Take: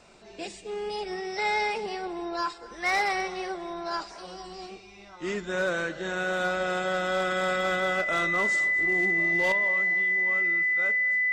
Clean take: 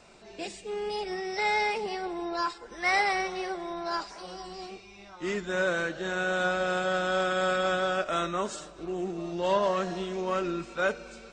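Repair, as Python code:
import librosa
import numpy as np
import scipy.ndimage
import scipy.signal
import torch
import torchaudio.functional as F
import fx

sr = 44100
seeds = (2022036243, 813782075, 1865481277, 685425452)

y = fx.fix_declip(x, sr, threshold_db=-19.0)
y = fx.notch(y, sr, hz=2000.0, q=30.0)
y = fx.fix_echo_inverse(y, sr, delay_ms=242, level_db=-20.0)
y = fx.gain(y, sr, db=fx.steps((0.0, 0.0), (9.52, 11.0)))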